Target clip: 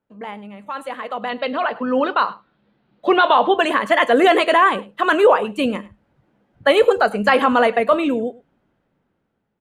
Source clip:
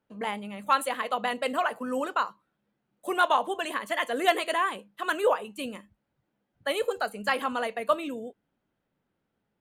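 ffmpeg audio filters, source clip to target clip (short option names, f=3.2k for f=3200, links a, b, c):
-filter_complex "[0:a]aemphasis=mode=reproduction:type=75fm,alimiter=limit=-20dB:level=0:latency=1:release=18,asettb=1/sr,asplit=3[a][b][c];[a]atrim=end=1.294[d];[b]atrim=start=1.29:end=3.59,asetpts=PTS-STARTPTS,afade=t=in:d=0.004:c=qsin,afade=t=out:st=2.296:d=0.004:c=qsin,highshelf=f=6k:t=q:w=3:g=-14[e];[c]atrim=start=3.586[f];[d][e]acrossfade=d=0.004:c1=hsin:c2=qsin[g];[g][f]acrossfade=d=0.004:c1=qsin:c2=hsin,aecho=1:1:102:0.0891,dynaudnorm=f=770:g=5:m=16.5dB"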